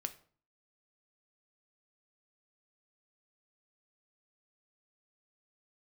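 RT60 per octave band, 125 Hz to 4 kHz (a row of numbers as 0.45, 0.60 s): 0.60, 0.55, 0.45, 0.45, 0.35, 0.35 s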